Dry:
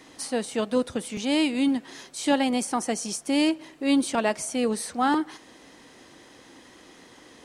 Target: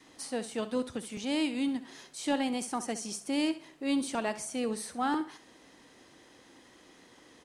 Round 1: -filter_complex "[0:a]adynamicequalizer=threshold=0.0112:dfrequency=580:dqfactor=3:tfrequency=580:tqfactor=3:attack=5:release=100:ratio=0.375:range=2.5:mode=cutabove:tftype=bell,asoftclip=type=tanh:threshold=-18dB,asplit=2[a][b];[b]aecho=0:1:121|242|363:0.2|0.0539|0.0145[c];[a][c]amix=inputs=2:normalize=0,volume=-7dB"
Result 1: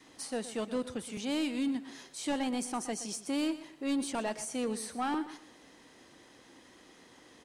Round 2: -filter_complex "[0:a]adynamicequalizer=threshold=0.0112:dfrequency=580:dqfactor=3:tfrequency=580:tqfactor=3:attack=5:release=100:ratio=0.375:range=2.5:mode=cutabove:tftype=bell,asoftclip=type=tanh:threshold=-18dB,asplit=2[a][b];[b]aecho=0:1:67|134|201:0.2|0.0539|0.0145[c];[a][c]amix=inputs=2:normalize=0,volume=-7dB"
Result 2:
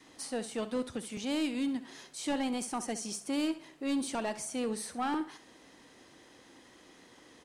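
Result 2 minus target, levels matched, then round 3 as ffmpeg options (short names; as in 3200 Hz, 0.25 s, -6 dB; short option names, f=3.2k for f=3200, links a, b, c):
soft clip: distortion +18 dB
-filter_complex "[0:a]adynamicequalizer=threshold=0.0112:dfrequency=580:dqfactor=3:tfrequency=580:tqfactor=3:attack=5:release=100:ratio=0.375:range=2.5:mode=cutabove:tftype=bell,asoftclip=type=tanh:threshold=-6.5dB,asplit=2[a][b];[b]aecho=0:1:67|134|201:0.2|0.0539|0.0145[c];[a][c]amix=inputs=2:normalize=0,volume=-7dB"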